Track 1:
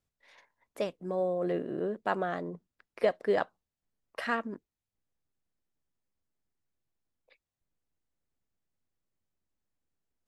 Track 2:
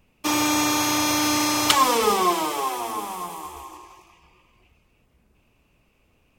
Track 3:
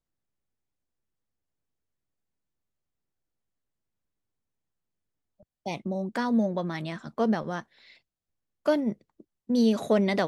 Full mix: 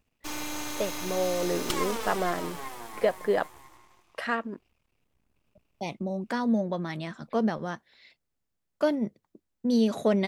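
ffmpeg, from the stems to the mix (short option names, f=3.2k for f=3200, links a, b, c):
-filter_complex "[0:a]volume=2dB[a];[1:a]aeval=exprs='max(val(0),0)':c=same,volume=-9dB[b];[2:a]agate=range=-33dB:threshold=-54dB:ratio=3:detection=peak,adelay=150,volume=-1dB[c];[a][b][c]amix=inputs=3:normalize=0"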